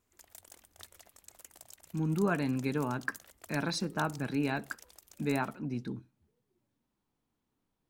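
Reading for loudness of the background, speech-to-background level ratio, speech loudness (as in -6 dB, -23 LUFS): -53.0 LUFS, 19.0 dB, -34.0 LUFS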